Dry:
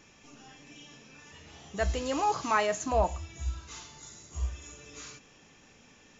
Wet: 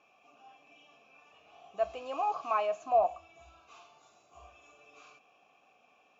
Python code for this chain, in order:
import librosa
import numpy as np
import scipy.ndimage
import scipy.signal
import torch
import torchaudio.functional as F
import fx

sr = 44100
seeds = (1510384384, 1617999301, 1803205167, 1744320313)

y = fx.vowel_filter(x, sr, vowel='a')
y = y * librosa.db_to_amplitude(6.0)